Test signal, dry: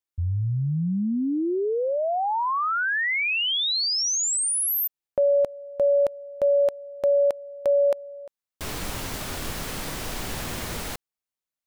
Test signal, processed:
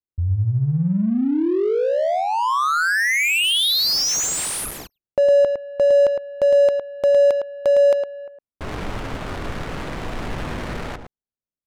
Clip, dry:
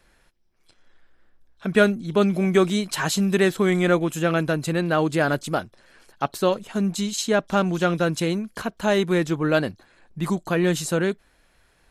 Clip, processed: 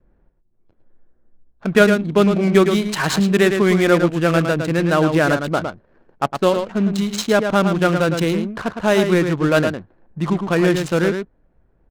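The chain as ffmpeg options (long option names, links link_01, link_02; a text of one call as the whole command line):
ffmpeg -i in.wav -af "aecho=1:1:109:0.473,adynamicequalizer=threshold=0.00631:dfrequency=800:dqfactor=6.1:tfrequency=800:tqfactor=6.1:attack=5:release=100:ratio=0.375:range=2:mode=cutabove:tftype=bell,adynamicsmooth=sensitivity=6:basefreq=510,volume=4.5dB" out.wav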